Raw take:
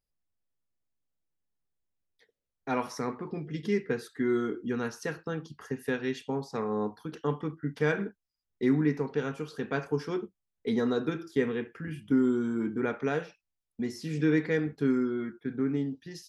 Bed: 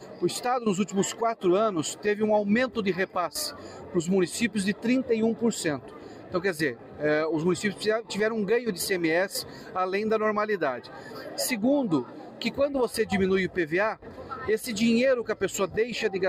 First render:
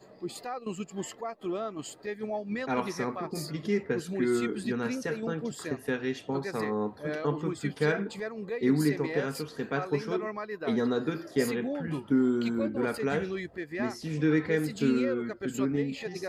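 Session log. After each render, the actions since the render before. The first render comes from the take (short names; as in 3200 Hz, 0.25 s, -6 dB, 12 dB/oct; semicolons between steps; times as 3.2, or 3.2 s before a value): add bed -10.5 dB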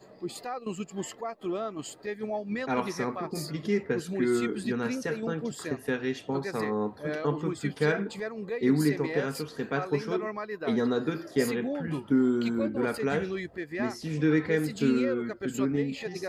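gain +1 dB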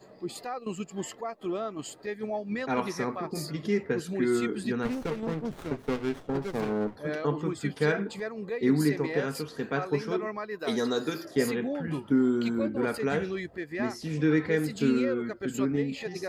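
4.85–6.96 running maximum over 17 samples; 10.59–11.25 tone controls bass -6 dB, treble +15 dB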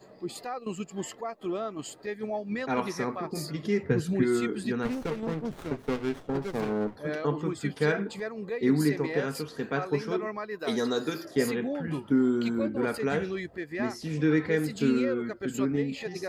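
3.83–4.23 bell 110 Hz +14 dB 1.4 oct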